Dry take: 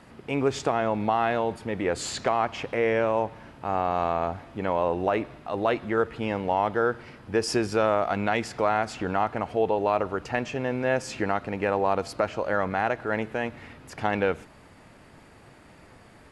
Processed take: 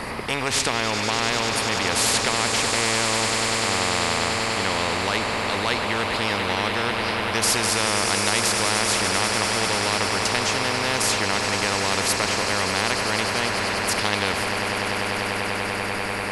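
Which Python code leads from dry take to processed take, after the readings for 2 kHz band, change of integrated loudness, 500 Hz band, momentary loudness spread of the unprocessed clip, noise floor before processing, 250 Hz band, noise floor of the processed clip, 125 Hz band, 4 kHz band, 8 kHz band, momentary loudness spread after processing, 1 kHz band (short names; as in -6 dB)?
+10.0 dB, +5.5 dB, -1.0 dB, 6 LU, -52 dBFS, +1.0 dB, -27 dBFS, +4.5 dB, +18.0 dB, +19.0 dB, 4 LU, +3.0 dB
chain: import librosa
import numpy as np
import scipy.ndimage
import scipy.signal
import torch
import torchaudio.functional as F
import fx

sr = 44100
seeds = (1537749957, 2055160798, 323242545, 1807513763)

p1 = fx.ripple_eq(x, sr, per_octave=0.9, db=7)
p2 = p1 + fx.echo_swell(p1, sr, ms=98, loudest=8, wet_db=-16.0, dry=0)
p3 = fx.spectral_comp(p2, sr, ratio=4.0)
y = F.gain(torch.from_numpy(p3), 4.5).numpy()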